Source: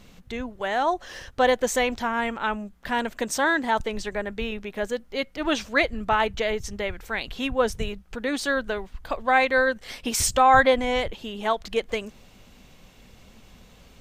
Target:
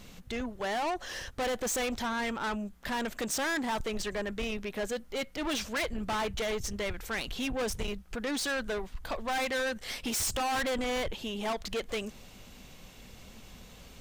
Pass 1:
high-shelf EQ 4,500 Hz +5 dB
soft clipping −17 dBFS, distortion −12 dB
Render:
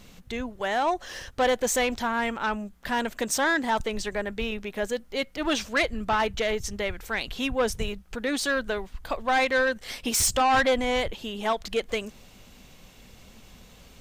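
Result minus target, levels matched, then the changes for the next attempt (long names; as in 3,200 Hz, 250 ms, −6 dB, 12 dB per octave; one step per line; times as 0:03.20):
soft clipping: distortion −8 dB
change: soft clipping −29 dBFS, distortion −4 dB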